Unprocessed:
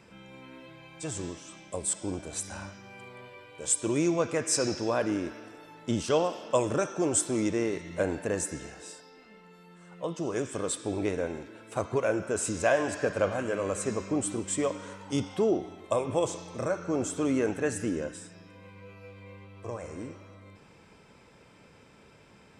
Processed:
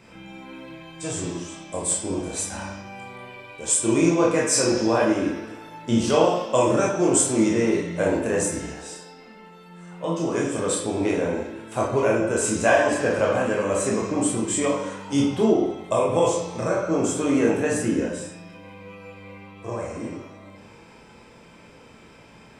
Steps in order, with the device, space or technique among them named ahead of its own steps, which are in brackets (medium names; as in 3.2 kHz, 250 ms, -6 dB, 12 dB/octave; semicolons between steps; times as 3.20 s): bathroom (reverberation RT60 0.60 s, pre-delay 16 ms, DRR -3.5 dB); trim +3 dB